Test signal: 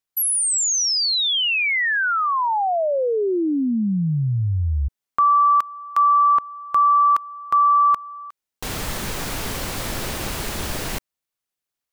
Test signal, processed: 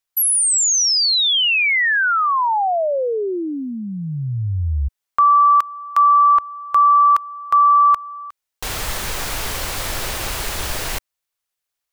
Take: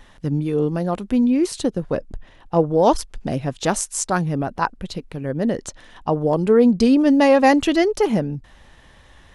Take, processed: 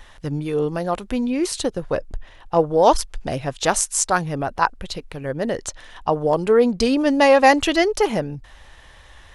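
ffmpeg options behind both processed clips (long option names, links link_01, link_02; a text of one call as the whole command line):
ffmpeg -i in.wav -af "equalizer=frequency=210:width_type=o:width=1.8:gain=-10.5,volume=4dB" out.wav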